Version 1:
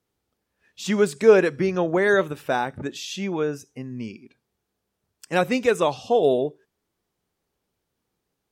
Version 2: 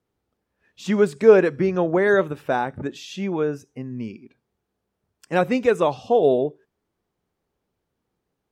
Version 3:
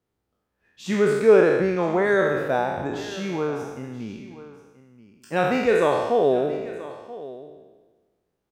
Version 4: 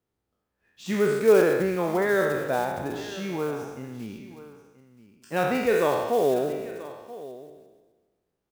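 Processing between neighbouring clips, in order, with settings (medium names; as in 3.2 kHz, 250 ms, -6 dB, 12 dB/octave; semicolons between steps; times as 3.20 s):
treble shelf 2.7 kHz -10 dB; trim +2 dB
spectral sustain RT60 1.29 s; delay 981 ms -17 dB; trim -4 dB
block-companded coder 5-bit; trim -3 dB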